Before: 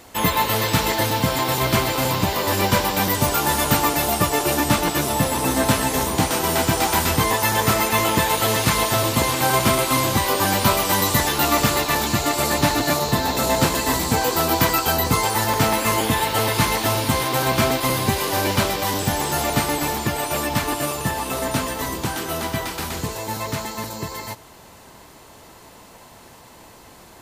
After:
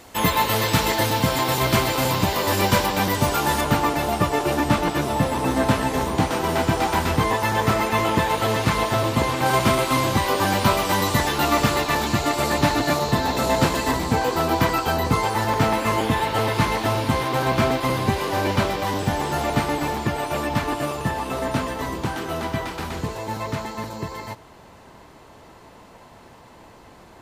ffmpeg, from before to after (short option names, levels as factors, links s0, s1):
-af "asetnsamples=n=441:p=0,asendcmd='2.86 lowpass f 4900;3.61 lowpass f 2200;9.46 lowpass f 3800;13.91 lowpass f 2300',lowpass=f=11000:p=1"